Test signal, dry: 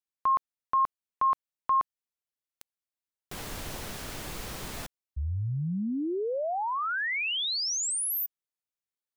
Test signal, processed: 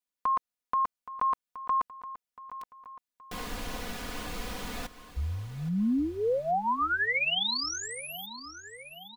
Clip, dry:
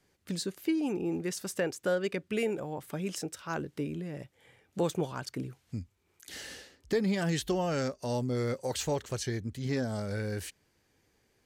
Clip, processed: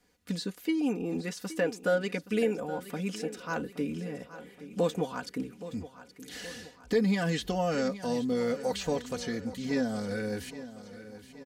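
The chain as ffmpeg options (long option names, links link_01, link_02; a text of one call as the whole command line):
ffmpeg -i in.wav -filter_complex "[0:a]aecho=1:1:4.1:0.73,acrossover=split=4900[link_01][link_02];[link_02]acompressor=threshold=-46dB:ratio=4:attack=1:release=60[link_03];[link_01][link_03]amix=inputs=2:normalize=0,aecho=1:1:822|1644|2466|3288|4110:0.188|0.0998|0.0529|0.028|0.0149" out.wav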